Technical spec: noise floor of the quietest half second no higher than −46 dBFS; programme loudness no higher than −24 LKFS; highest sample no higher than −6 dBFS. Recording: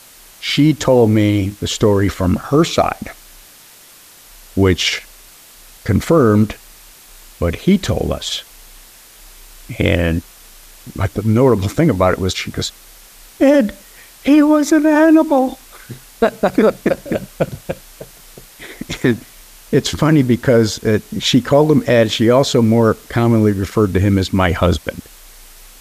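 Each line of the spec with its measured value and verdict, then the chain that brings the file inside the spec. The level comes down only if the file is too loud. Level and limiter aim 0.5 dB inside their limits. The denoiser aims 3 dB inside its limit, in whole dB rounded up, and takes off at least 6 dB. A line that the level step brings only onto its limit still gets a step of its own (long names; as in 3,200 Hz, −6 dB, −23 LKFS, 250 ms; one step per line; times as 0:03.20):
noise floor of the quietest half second −43 dBFS: out of spec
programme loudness −15.0 LKFS: out of spec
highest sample −2.0 dBFS: out of spec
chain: level −9.5 dB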